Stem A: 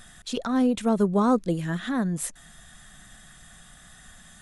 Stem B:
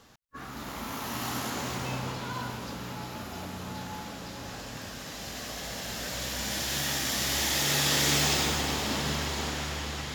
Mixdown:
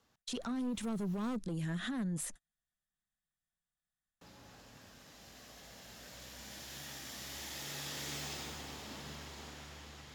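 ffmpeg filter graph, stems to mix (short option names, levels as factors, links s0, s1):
-filter_complex "[0:a]agate=range=0.00631:threshold=0.0126:ratio=16:detection=peak,asoftclip=type=tanh:threshold=0.0794,volume=0.75,asplit=2[s0][s1];[1:a]volume=0.141,asplit=3[s2][s3][s4];[s2]atrim=end=1.36,asetpts=PTS-STARTPTS,afade=t=out:st=1.356:d=0.004:c=hsin[s5];[s3]atrim=start=1.36:end=4.21,asetpts=PTS-STARTPTS,volume=0[s6];[s4]atrim=start=4.21,asetpts=PTS-STARTPTS,afade=t=in:d=0.004:c=hsin[s7];[s5][s6][s7]concat=n=3:v=0:a=1[s8];[s1]apad=whole_len=447466[s9];[s8][s9]sidechaincompress=threshold=0.02:ratio=8:attack=16:release=168[s10];[s0][s10]amix=inputs=2:normalize=0,acrossover=split=280|3000[s11][s12][s13];[s12]acompressor=threshold=0.00891:ratio=2[s14];[s11][s14][s13]amix=inputs=3:normalize=0,alimiter=level_in=2.24:limit=0.0631:level=0:latency=1:release=63,volume=0.447"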